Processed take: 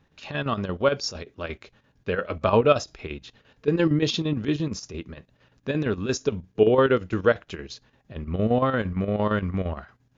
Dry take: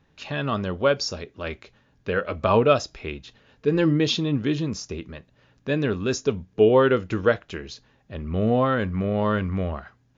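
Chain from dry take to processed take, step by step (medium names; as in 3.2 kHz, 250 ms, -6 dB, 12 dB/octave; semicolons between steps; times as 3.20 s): square tremolo 8.7 Hz, depth 60%, duty 70%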